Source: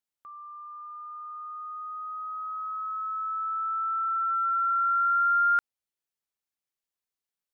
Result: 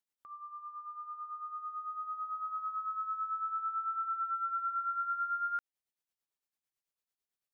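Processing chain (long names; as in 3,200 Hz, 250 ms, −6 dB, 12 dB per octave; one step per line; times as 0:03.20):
downward compressor 6 to 1, threshold −31 dBFS, peak gain reduction 9.5 dB
amplitude tremolo 9 Hz, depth 65%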